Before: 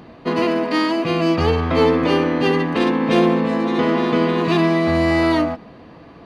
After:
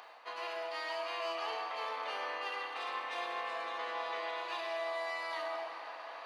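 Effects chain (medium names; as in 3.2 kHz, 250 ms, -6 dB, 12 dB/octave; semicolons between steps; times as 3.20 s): high-pass 720 Hz 24 dB/octave; reverse; compression 4:1, threshold -43 dBFS, peak gain reduction 19.5 dB; reverse; reverberation RT60 2.8 s, pre-delay 26 ms, DRR 0.5 dB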